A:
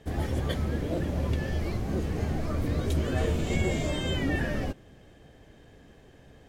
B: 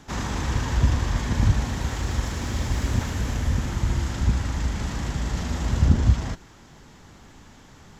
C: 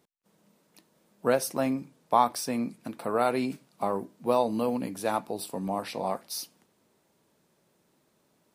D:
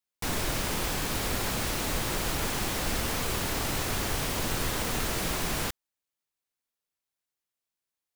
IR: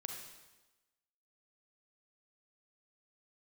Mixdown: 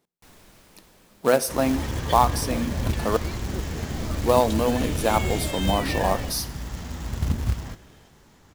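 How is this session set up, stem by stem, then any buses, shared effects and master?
−2.5 dB, 1.60 s, no send, parametric band 4,500 Hz +8 dB 2.3 octaves
−8.5 dB, 1.40 s, send −9 dB, no processing
−4.5 dB, 0.00 s, muted 0:03.17–0:04.01, send −11 dB, mains-hum notches 60/120/180/240 Hz; automatic gain control gain up to 10.5 dB
−19.5 dB, 0.00 s, no send, automatic ducking −15 dB, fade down 2.00 s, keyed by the third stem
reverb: on, RT60 1.1 s, pre-delay 32 ms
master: floating-point word with a short mantissa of 2 bits

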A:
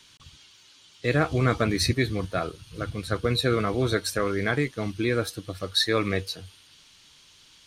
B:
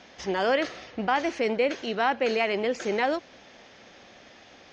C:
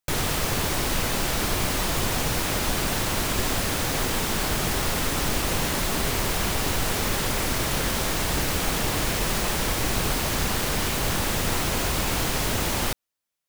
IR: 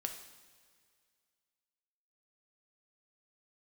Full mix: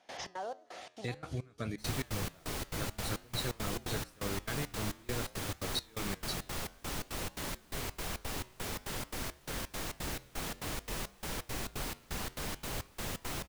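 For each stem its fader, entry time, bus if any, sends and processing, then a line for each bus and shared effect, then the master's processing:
−3.0 dB, 0.00 s, bus A, no send, bass and treble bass +14 dB, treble +9 dB
−5.5 dB, 0.00 s, bus A, no send, treble cut that deepens with the level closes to 950 Hz, closed at −21 dBFS; parametric band 760 Hz +8 dB; envelope flattener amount 50%; automatic ducking −19 dB, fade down 1.65 s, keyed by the first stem
−8.5 dB, 1.70 s, no bus, no send, no processing
bus A: 0.0 dB, low-shelf EQ 200 Hz −11 dB; downward compressor 2.5 to 1, threshold −33 dBFS, peak gain reduction 11 dB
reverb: not used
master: gate pattern ".xx.xx..xx" 171 BPM −24 dB; flanger 0.53 Hz, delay 6.5 ms, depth 5.7 ms, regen −89%

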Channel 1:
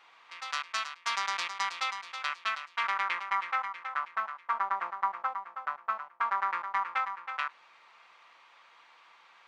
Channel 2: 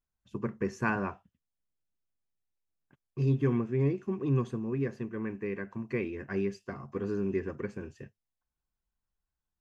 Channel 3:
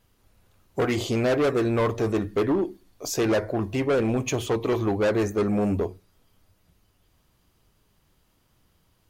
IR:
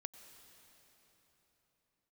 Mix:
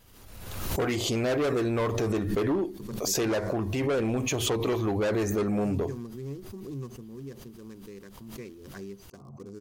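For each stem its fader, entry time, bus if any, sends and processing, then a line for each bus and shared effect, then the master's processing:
muted
−10.0 dB, 2.45 s, bus A, no send, adaptive Wiener filter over 25 samples; high shelf with overshoot 4,100 Hz +13.5 dB, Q 1.5
0.0 dB, 0.00 s, bus A, no send, parametric band 11,000 Hz −3 dB 1.5 octaves
bus A: 0.0 dB, brickwall limiter −22 dBFS, peak gain reduction 6 dB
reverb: not used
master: high-shelf EQ 4,700 Hz +7 dB; background raised ahead of every attack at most 42 dB per second

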